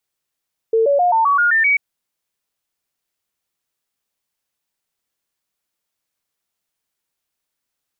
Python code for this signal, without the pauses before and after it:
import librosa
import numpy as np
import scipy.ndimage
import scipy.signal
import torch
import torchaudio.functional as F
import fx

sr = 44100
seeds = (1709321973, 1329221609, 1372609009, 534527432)

y = fx.stepped_sweep(sr, from_hz=449.0, direction='up', per_octave=3, tones=8, dwell_s=0.13, gap_s=0.0, level_db=-11.5)